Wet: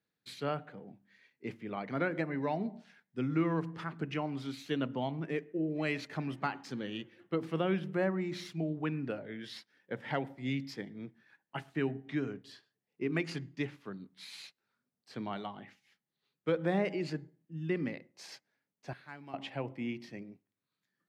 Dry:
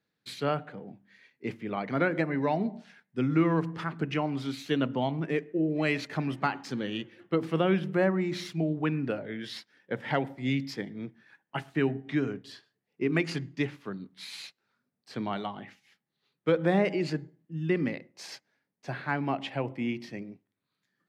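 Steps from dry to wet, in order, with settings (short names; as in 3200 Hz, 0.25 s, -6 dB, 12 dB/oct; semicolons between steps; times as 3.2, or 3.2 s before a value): 18.93–19.34 pre-emphasis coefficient 0.8; gain -6 dB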